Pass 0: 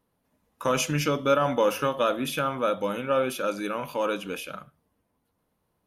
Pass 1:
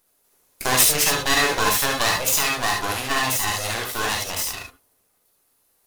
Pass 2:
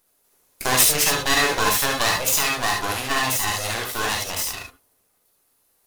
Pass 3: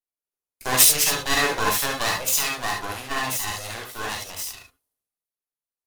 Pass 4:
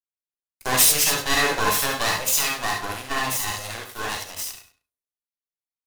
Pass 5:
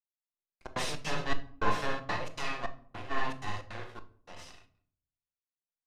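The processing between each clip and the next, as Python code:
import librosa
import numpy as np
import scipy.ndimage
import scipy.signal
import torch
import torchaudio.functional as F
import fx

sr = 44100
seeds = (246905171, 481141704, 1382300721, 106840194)

y1 = np.abs(x)
y1 = fx.bass_treble(y1, sr, bass_db=-8, treble_db=14)
y1 = fx.rev_gated(y1, sr, seeds[0], gate_ms=90, shape='rising', drr_db=0.5)
y1 = F.gain(torch.from_numpy(y1), 4.5).numpy()
y2 = y1
y3 = fx.band_widen(y2, sr, depth_pct=70)
y3 = F.gain(torch.from_numpy(y3), -3.5).numpy()
y4 = fx.leveller(y3, sr, passes=2)
y4 = fx.echo_feedback(y4, sr, ms=98, feedback_pct=21, wet_db=-13.5)
y4 = F.gain(torch.from_numpy(y4), -6.5).numpy()
y5 = fx.step_gate(y4, sr, bpm=158, pattern='...xxxx.xx.xxx', floor_db=-60.0, edge_ms=4.5)
y5 = fx.spacing_loss(y5, sr, db_at_10k=28)
y5 = fx.room_shoebox(y5, sr, seeds[1], volume_m3=620.0, walls='furnished', distance_m=0.89)
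y5 = F.gain(torch.from_numpy(y5), -5.0).numpy()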